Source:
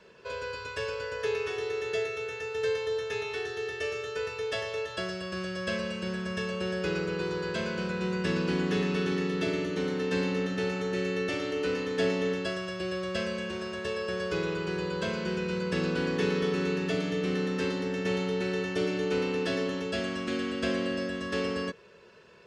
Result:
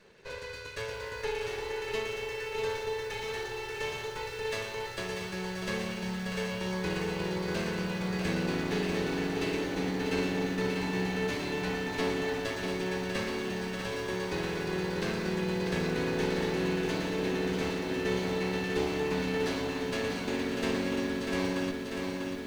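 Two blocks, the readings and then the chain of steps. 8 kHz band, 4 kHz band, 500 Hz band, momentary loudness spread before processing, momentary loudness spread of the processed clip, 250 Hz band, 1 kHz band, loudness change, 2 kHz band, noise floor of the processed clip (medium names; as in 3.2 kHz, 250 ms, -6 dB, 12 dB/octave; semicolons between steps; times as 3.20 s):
+3.0 dB, -0.5 dB, -2.5 dB, 6 LU, 5 LU, -1.0 dB, +1.0 dB, -1.5 dB, -1.0 dB, -40 dBFS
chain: comb filter that takes the minimum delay 0.48 ms; bit-crushed delay 643 ms, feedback 80%, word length 9-bit, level -6 dB; trim -2 dB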